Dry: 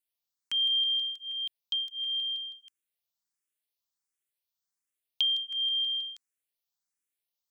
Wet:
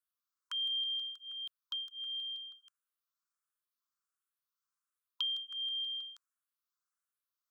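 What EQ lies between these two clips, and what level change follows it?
brick-wall FIR high-pass 1 kHz; resonant high shelf 1.7 kHz -7.5 dB, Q 3; +2.0 dB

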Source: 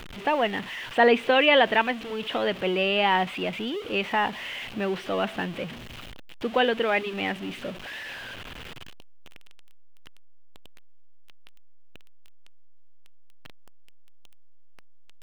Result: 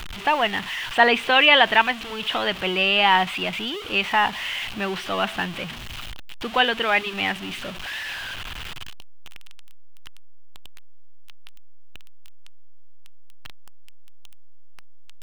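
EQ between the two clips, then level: ten-band graphic EQ 125 Hz -5 dB, 250 Hz -8 dB, 500 Hz -11 dB, 2 kHz -3 dB; +9.0 dB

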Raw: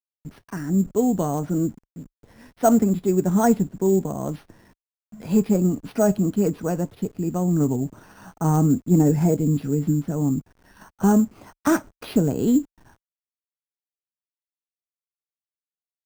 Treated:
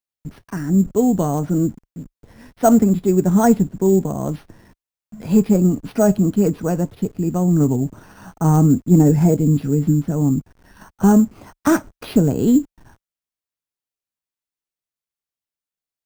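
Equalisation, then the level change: bass shelf 160 Hz +5 dB; +3.0 dB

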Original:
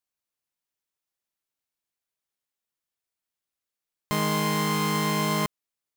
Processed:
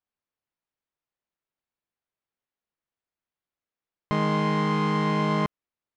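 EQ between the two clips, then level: distance through air 120 m; treble shelf 3.3 kHz -10.5 dB; +2.5 dB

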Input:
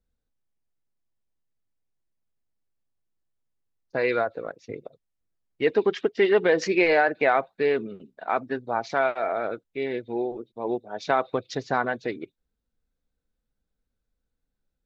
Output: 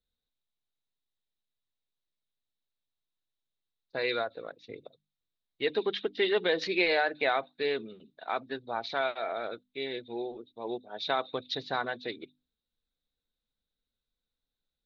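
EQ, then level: resonant low-pass 3.8 kHz, resonance Q 7.5; bass shelf 160 Hz -3.5 dB; hum notches 50/100/150/200/250/300 Hz; -7.5 dB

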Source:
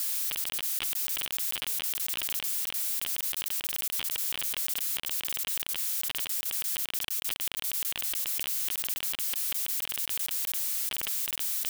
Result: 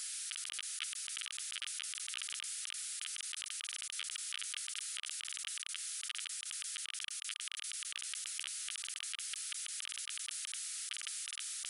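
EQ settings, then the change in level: brick-wall FIR band-pass 1.2–11 kHz; -5.5 dB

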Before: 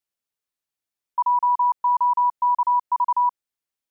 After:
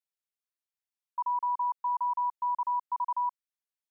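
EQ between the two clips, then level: high-pass 700 Hz 12 dB/octave; -9.0 dB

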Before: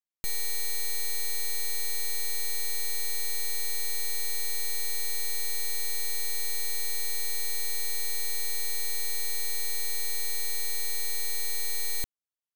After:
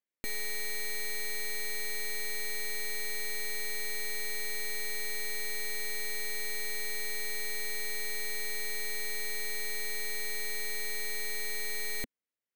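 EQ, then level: graphic EQ 250/500/2000 Hz +11/+10/+11 dB; -6.5 dB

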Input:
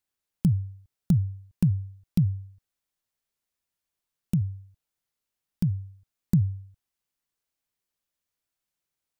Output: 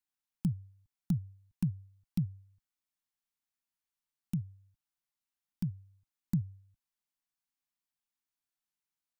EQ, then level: dynamic bell 100 Hz, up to -5 dB, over -38 dBFS, Q 7.7; Chebyshev band-stop 300–770 Hz, order 2; peaking EQ 73 Hz -7.5 dB 1.4 oct; -6.5 dB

